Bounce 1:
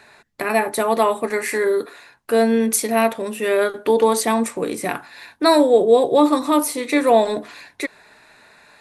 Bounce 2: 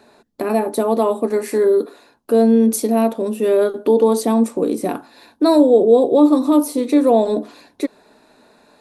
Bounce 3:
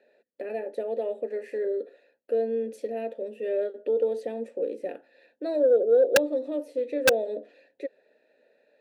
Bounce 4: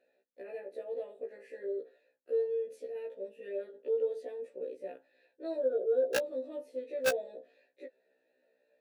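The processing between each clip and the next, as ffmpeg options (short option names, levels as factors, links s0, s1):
-filter_complex "[0:a]equalizer=f=125:t=o:w=1:g=-5,equalizer=f=250:t=o:w=1:g=10,equalizer=f=500:t=o:w=1:g=4,equalizer=f=2000:t=o:w=1:g=-12,equalizer=f=8000:t=o:w=1:g=-4,asplit=2[s0][s1];[s1]alimiter=limit=0.376:level=0:latency=1:release=155,volume=1[s2];[s0][s2]amix=inputs=2:normalize=0,volume=0.473"
-filter_complex "[0:a]asplit=3[s0][s1][s2];[s0]bandpass=f=530:t=q:w=8,volume=1[s3];[s1]bandpass=f=1840:t=q:w=8,volume=0.501[s4];[s2]bandpass=f=2480:t=q:w=8,volume=0.355[s5];[s3][s4][s5]amix=inputs=3:normalize=0,aeval=exprs='(mod(2.99*val(0)+1,2)-1)/2.99':c=same,acontrast=32,volume=0.447"
-af "afftfilt=real='re*1.73*eq(mod(b,3),0)':imag='im*1.73*eq(mod(b,3),0)':win_size=2048:overlap=0.75,volume=0.447"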